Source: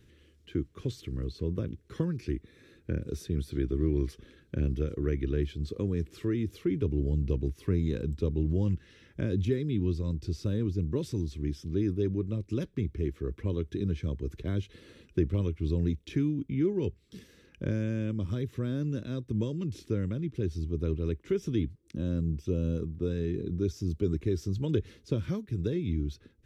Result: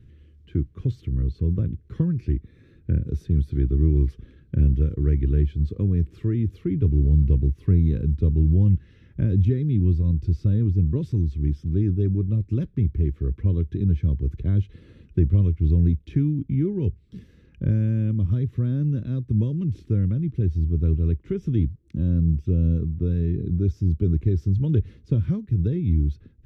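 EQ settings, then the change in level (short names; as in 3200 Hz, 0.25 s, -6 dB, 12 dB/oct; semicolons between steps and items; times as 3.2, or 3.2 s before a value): tone controls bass +15 dB, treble -9 dB; -3.0 dB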